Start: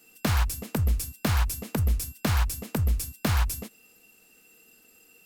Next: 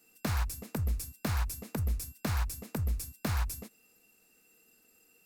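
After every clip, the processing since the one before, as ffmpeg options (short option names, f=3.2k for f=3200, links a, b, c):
-af "equalizer=f=3.1k:t=o:w=0.35:g=-5.5,volume=-7dB"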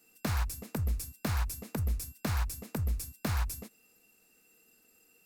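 -af anull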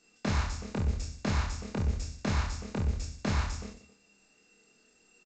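-filter_complex "[0:a]asplit=2[a][b];[b]adelay=25,volume=-4.5dB[c];[a][c]amix=inputs=2:normalize=0,asplit=2[d][e];[e]aecho=0:1:30|69|119.7|185.6|271.3:0.631|0.398|0.251|0.158|0.1[f];[d][f]amix=inputs=2:normalize=0" -ar 16000 -c:a g722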